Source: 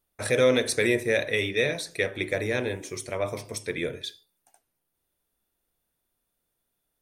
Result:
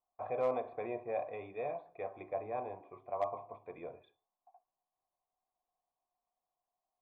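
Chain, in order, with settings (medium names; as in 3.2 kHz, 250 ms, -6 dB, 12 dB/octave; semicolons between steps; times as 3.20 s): cascade formant filter a; overload inside the chain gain 31.5 dB; trim +7 dB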